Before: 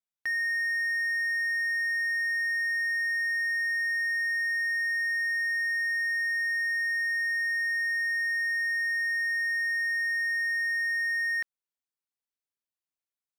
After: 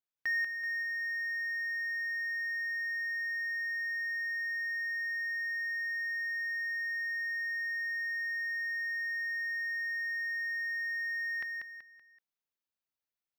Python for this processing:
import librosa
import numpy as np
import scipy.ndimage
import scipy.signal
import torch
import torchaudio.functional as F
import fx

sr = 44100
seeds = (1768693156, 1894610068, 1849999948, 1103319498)

p1 = fx.peak_eq(x, sr, hz=8600.0, db=-13.5, octaves=0.48)
p2 = p1 + fx.echo_feedback(p1, sr, ms=190, feedback_pct=36, wet_db=-5.0, dry=0)
y = F.gain(torch.from_numpy(p2), -2.0).numpy()